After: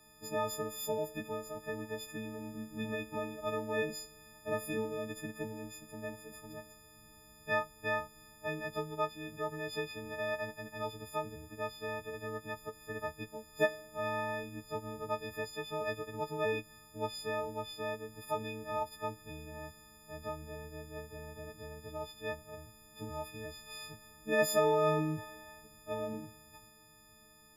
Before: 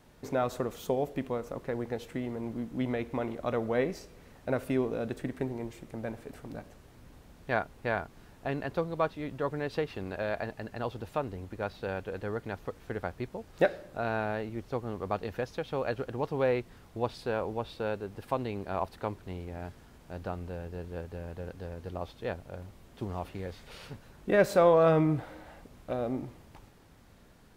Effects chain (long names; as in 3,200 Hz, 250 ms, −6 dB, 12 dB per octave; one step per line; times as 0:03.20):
every partial snapped to a pitch grid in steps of 6 semitones
every ending faded ahead of time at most 390 dB per second
level −7.5 dB